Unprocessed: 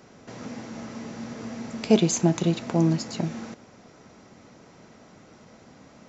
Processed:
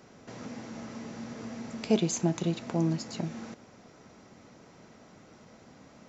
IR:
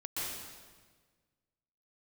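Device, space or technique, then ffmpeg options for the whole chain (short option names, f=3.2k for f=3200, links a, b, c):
parallel compression: -filter_complex "[0:a]asplit=2[a][b];[b]acompressor=threshold=-36dB:ratio=6,volume=-5dB[c];[a][c]amix=inputs=2:normalize=0,volume=-7dB"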